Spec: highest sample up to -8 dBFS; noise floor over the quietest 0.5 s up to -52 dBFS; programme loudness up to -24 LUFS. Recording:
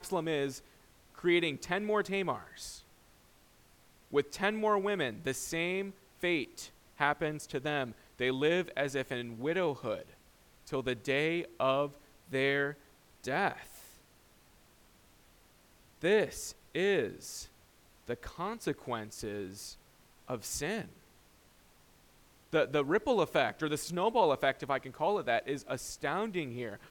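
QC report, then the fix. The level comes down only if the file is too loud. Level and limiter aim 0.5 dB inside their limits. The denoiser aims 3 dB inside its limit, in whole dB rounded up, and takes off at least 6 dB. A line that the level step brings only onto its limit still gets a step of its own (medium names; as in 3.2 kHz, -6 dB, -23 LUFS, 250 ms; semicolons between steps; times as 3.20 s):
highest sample -12.0 dBFS: pass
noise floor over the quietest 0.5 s -63 dBFS: pass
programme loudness -33.5 LUFS: pass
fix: none needed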